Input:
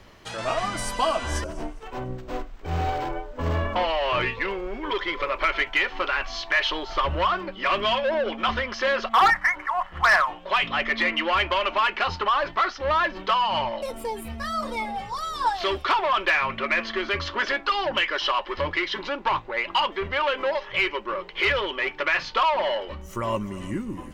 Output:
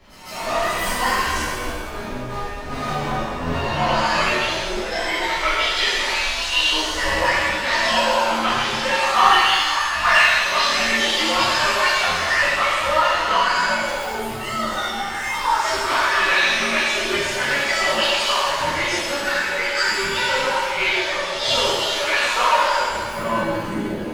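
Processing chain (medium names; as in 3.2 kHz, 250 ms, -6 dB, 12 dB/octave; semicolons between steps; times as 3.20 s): pitch shift switched off and on +8.5 st, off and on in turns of 207 ms; reverse echo 155 ms -12 dB; pitch-shifted reverb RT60 1.5 s, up +7 st, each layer -8 dB, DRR -11 dB; trim -6.5 dB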